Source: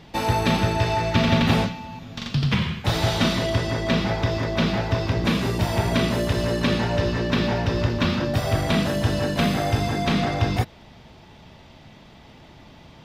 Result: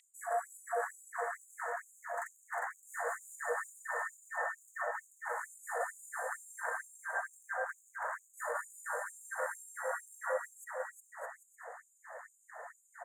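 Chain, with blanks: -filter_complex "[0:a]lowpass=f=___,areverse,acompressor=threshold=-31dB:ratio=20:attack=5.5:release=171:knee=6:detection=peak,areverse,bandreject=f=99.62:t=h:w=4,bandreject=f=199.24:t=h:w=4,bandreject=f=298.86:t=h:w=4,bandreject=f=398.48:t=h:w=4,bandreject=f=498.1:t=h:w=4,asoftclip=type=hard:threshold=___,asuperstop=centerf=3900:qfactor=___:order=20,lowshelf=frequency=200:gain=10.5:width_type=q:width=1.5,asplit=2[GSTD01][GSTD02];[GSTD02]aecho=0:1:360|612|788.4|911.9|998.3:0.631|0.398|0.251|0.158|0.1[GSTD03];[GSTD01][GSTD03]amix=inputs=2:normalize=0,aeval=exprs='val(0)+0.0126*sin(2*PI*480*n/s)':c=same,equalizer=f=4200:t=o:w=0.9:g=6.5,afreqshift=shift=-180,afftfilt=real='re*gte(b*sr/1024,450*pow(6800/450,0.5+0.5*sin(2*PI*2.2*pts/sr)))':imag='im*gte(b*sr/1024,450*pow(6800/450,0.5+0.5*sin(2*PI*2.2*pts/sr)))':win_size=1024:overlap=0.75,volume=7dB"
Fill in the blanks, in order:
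9600, -28.5dB, 0.76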